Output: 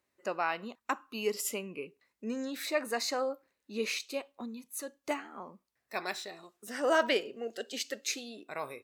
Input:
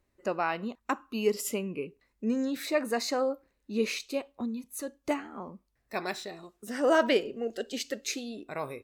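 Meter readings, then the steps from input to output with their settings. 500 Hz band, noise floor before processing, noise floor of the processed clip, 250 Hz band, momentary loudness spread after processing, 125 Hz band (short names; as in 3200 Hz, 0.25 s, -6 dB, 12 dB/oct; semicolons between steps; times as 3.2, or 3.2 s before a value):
-4.5 dB, -76 dBFS, -83 dBFS, -7.5 dB, 13 LU, n/a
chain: HPF 110 Hz 12 dB/oct; low shelf 450 Hz -10 dB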